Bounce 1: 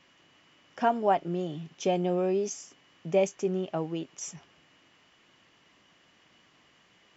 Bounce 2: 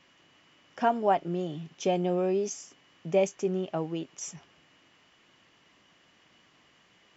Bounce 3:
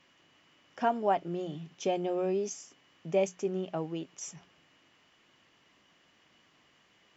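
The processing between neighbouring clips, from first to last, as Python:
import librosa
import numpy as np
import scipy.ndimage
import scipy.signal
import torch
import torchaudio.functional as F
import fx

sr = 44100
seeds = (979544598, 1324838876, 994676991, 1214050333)

y1 = x
y2 = fx.hum_notches(y1, sr, base_hz=60, count=3)
y2 = F.gain(torch.from_numpy(y2), -3.0).numpy()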